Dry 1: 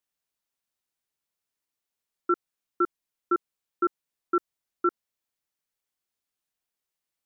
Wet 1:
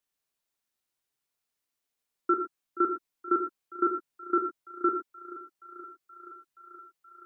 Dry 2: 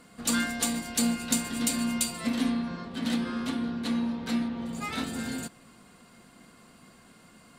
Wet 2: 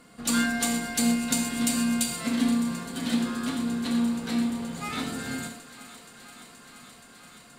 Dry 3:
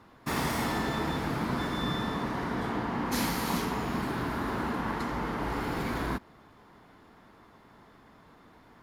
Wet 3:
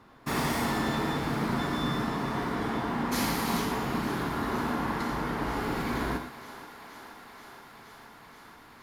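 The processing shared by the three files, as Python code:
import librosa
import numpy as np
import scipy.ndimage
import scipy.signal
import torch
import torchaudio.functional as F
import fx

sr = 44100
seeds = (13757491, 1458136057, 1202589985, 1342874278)

p1 = x + fx.echo_thinned(x, sr, ms=475, feedback_pct=85, hz=340.0, wet_db=-15.5, dry=0)
y = fx.rev_gated(p1, sr, seeds[0], gate_ms=140, shape='flat', drr_db=5.0)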